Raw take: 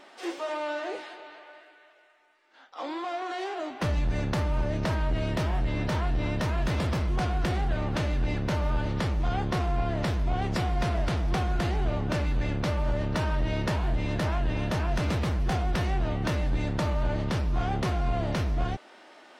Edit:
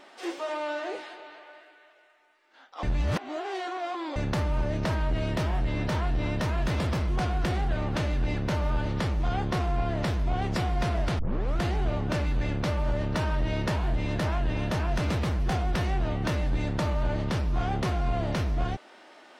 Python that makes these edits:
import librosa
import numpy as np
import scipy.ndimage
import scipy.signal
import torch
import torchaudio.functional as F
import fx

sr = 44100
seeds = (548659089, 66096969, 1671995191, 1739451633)

y = fx.edit(x, sr, fx.reverse_span(start_s=2.83, length_s=1.33),
    fx.tape_start(start_s=11.19, length_s=0.4), tone=tone)